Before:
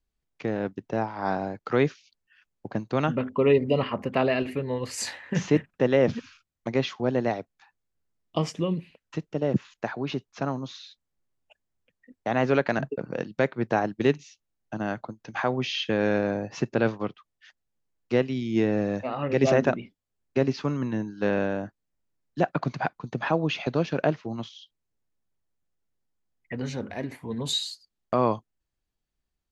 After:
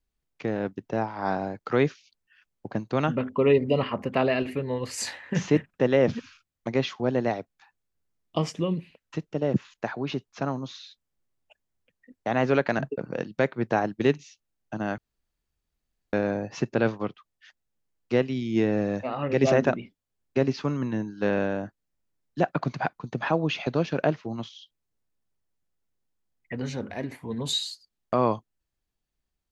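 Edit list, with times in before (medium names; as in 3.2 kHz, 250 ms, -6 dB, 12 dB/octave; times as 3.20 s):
14.98–16.13 s: room tone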